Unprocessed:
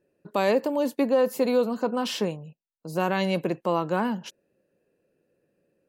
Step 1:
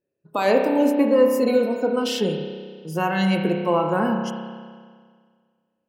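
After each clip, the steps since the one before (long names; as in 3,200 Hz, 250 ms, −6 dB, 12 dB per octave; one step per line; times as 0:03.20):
noise reduction from a noise print of the clip's start 16 dB
spring reverb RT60 1.8 s, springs 31 ms, chirp 65 ms, DRR 2.5 dB
level +3.5 dB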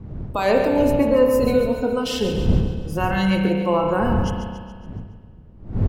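wind on the microphone 130 Hz −27 dBFS
repeating echo 140 ms, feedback 53%, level −9.5 dB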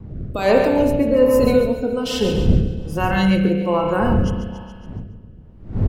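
rotating-speaker cabinet horn 1.2 Hz
level +3.5 dB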